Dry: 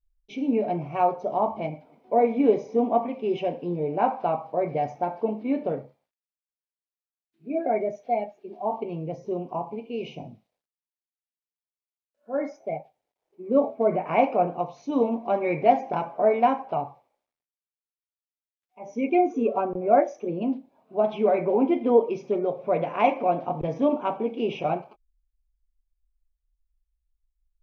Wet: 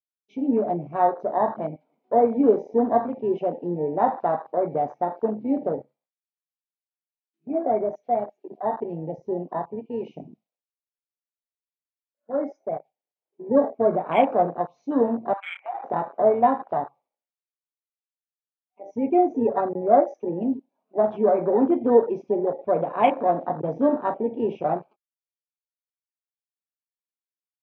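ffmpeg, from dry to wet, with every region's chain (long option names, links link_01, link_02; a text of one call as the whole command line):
ffmpeg -i in.wav -filter_complex "[0:a]asettb=1/sr,asplit=3[link_01][link_02][link_03];[link_01]atrim=end=15.334[link_04];[link_02]atrim=start=15.33:end=15.84,asetpts=PTS-STARTPTS,afade=type=in:duration=0.004:curve=qsin,afade=type=out:start_time=0.506:duration=0.004:curve=qsin,highshelf=frequency=2100:gain=5.5,acompressor=threshold=-21dB:ratio=8:attack=3.2:release=140:knee=1:detection=peak,asuperpass=centerf=1500:order=12:qfactor=0.69[link_05];[link_03]atrim=start=15.836[link_06];[link_04][link_05]acrossfade=duration=0.004:curve1=hsin:curve2=qsin[link_07];[link_07][link_06]acrossfade=duration=0.004:curve1=qsin:curve2=hsin,highpass=frequency=160:width=0.5412,highpass=frequency=160:width=1.3066,afwtdn=0.0316,volume=2dB" out.wav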